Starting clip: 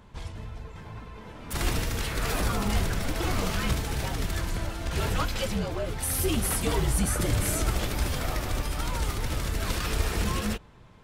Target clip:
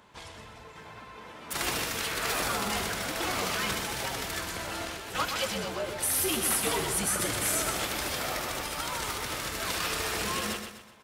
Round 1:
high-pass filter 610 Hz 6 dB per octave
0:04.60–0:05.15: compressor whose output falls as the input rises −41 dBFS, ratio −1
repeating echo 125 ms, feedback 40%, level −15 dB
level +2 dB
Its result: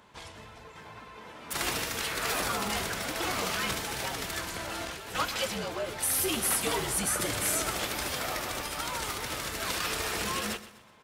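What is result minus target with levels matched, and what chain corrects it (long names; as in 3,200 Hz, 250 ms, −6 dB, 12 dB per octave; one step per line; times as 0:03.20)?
echo-to-direct −8 dB
high-pass filter 610 Hz 6 dB per octave
0:04.60–0:05.15: compressor whose output falls as the input rises −41 dBFS, ratio −1
repeating echo 125 ms, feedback 40%, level −7 dB
level +2 dB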